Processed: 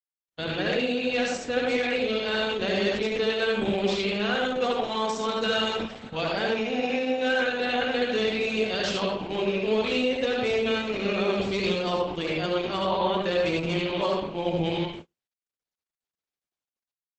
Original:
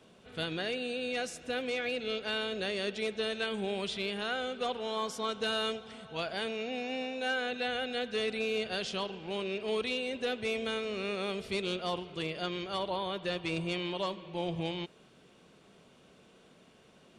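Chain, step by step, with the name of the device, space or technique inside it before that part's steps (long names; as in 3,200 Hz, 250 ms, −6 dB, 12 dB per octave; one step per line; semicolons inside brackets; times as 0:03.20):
0:02.83–0:03.89: mains-hum notches 60/120/180/240/300/360/420 Hz
speakerphone in a meeting room (convolution reverb RT60 0.50 s, pre-delay 65 ms, DRR −1.5 dB; automatic gain control gain up to 6 dB; noise gate −37 dBFS, range −54 dB; Opus 12 kbit/s 48,000 Hz)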